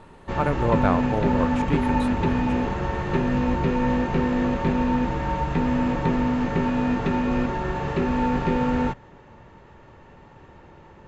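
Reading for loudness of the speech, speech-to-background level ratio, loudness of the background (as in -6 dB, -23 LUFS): -28.5 LUFS, -4.5 dB, -24.0 LUFS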